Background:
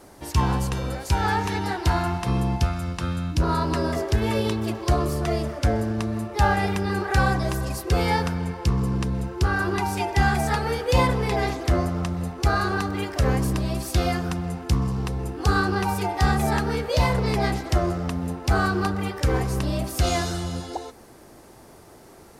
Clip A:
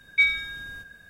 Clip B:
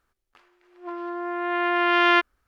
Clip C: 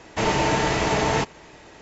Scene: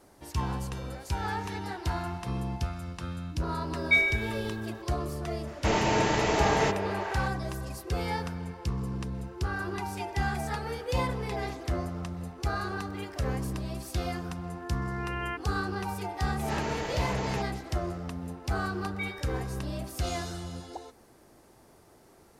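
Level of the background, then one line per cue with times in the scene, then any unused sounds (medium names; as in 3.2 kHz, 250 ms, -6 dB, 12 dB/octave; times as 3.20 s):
background -9.5 dB
3.73 s: add A -2.5 dB + Schroeder reverb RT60 0.63 s, combs from 28 ms, DRR 5 dB
5.47 s: add C -5 dB + repeats whose band climbs or falls 227 ms, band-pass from 460 Hz, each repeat 0.7 oct, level -3 dB
13.16 s: add B -16 dB + spectral gate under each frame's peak -10 dB strong
16.18 s: add C -13 dB + attacks held to a fixed rise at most 130 dB/s
18.81 s: add A -17 dB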